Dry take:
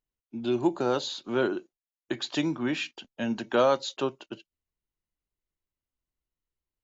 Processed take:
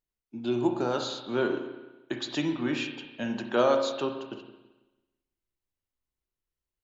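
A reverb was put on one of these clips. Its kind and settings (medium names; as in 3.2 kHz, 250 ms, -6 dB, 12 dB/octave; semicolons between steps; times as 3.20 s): spring tank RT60 1.1 s, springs 33/55 ms, chirp 35 ms, DRR 4.5 dB; trim -2 dB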